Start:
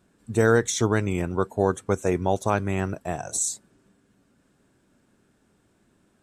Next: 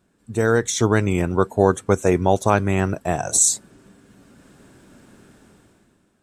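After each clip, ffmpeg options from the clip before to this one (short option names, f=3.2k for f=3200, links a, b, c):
-af "dynaudnorm=f=130:g=11:m=16dB,volume=-1dB"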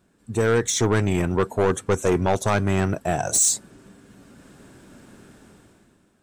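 -af "asoftclip=type=tanh:threshold=-15dB,volume=1.5dB"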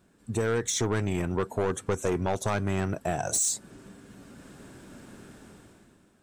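-af "acompressor=threshold=-28dB:ratio=2.5"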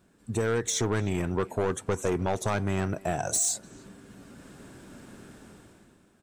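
-filter_complex "[0:a]asplit=2[a][b];[b]adelay=300,highpass=300,lowpass=3.4k,asoftclip=type=hard:threshold=-27dB,volume=-18dB[c];[a][c]amix=inputs=2:normalize=0"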